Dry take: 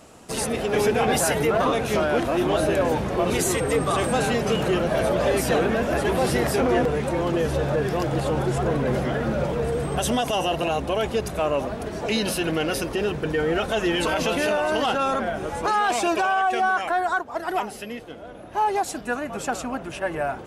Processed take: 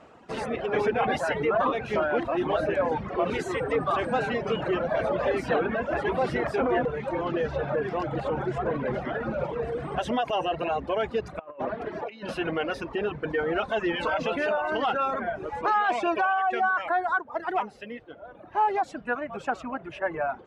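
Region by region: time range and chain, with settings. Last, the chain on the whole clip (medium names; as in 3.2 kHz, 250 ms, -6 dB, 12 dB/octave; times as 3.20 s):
7.25–7.73 s: boxcar filter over 4 samples + treble shelf 3.3 kHz +6 dB
11.39–12.29 s: bass shelf 130 Hz -9.5 dB + compressor with a negative ratio -29 dBFS, ratio -0.5 + low-pass 3.2 kHz 6 dB/octave
whole clip: reverb removal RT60 1.3 s; low-pass 1.8 kHz 12 dB/octave; tilt EQ +2 dB/octave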